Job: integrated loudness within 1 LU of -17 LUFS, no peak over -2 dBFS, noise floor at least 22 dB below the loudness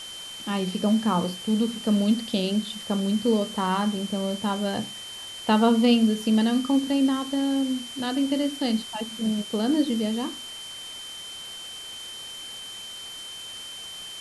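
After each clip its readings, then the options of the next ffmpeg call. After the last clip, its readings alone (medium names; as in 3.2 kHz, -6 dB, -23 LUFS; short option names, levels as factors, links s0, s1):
steady tone 3.1 kHz; tone level -37 dBFS; noise floor -39 dBFS; noise floor target -48 dBFS; loudness -26.0 LUFS; peak level -8.0 dBFS; loudness target -17.0 LUFS
-> -af "bandreject=f=3100:w=30"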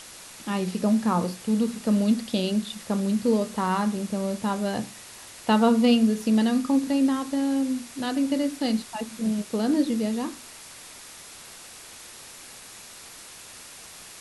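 steady tone not found; noise floor -45 dBFS; noise floor target -47 dBFS
-> -af "afftdn=nr=6:nf=-45"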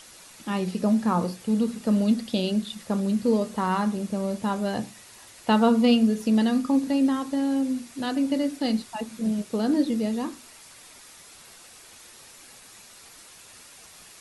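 noise floor -49 dBFS; loudness -25.0 LUFS; peak level -8.5 dBFS; loudness target -17.0 LUFS
-> -af "volume=2.51,alimiter=limit=0.794:level=0:latency=1"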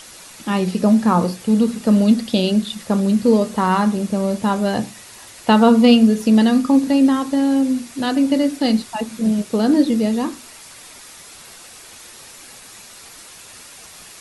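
loudness -17.0 LUFS; peak level -2.0 dBFS; noise floor -41 dBFS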